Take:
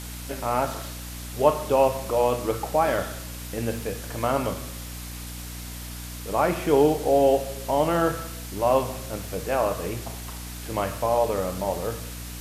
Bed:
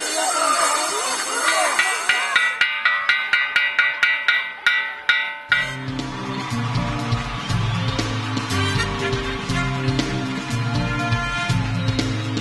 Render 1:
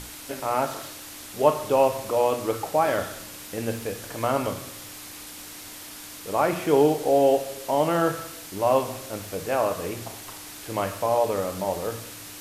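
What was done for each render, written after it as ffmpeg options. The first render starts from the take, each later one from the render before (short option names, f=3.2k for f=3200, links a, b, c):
-af "bandreject=f=60:t=h:w=6,bandreject=f=120:t=h:w=6,bandreject=f=180:t=h:w=6,bandreject=f=240:t=h:w=6"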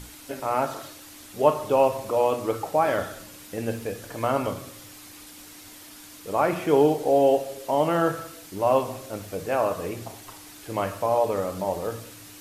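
-af "afftdn=nr=6:nf=-41"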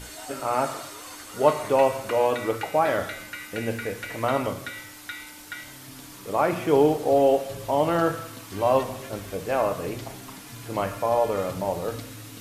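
-filter_complex "[1:a]volume=-20dB[a];[0:a][a]amix=inputs=2:normalize=0"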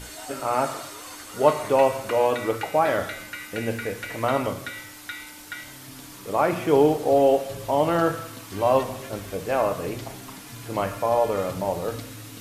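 -af "volume=1dB"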